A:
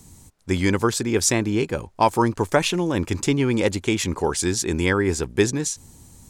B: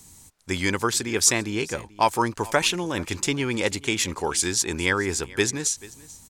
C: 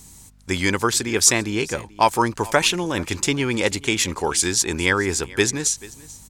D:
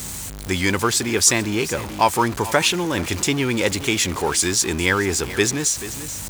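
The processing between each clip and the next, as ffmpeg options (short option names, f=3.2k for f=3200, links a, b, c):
-af "tiltshelf=f=780:g=-5,aecho=1:1:436:0.0891,volume=-2.5dB"
-af "aeval=exprs='val(0)+0.00178*(sin(2*PI*50*n/s)+sin(2*PI*2*50*n/s)/2+sin(2*PI*3*50*n/s)/3+sin(2*PI*4*50*n/s)/4+sin(2*PI*5*50*n/s)/5)':c=same,volume=3.5dB"
-af "aeval=exprs='val(0)+0.5*0.0562*sgn(val(0))':c=same,highpass=49,volume=-1dB"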